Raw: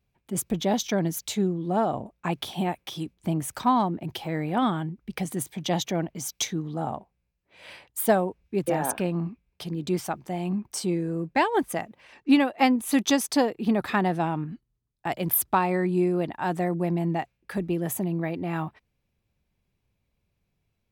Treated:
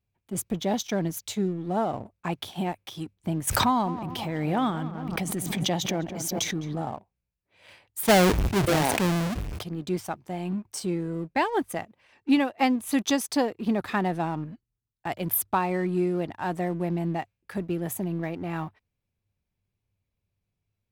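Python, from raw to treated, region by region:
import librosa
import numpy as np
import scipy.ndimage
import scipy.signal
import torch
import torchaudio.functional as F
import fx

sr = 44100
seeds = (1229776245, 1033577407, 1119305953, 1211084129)

y = fx.chain(x, sr, fx.echo_filtered(ms=207, feedback_pct=43, hz=1500.0, wet_db=-12.0),
    fx.pre_swell(db_per_s=26.0), at=(3.47, 6.82))
y = fx.chain(y, sr, fx.halfwave_hold(),
    fx.high_shelf(hz=11000.0, db=-3.5),
    fx.sustainer(db_per_s=23.0), at=(8.03, 9.63))
y = fx.peak_eq(y, sr, hz=99.0, db=11.0, octaves=0.23)
y = fx.leveller(y, sr, passes=1)
y = F.gain(torch.from_numpy(y), -6.0).numpy()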